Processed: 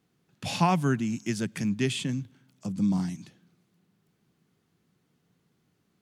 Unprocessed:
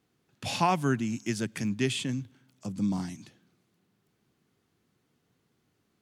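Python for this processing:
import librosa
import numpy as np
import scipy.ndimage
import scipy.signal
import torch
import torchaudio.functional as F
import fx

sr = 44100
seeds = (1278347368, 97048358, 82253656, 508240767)

y = fx.peak_eq(x, sr, hz=170.0, db=7.5, octaves=0.45)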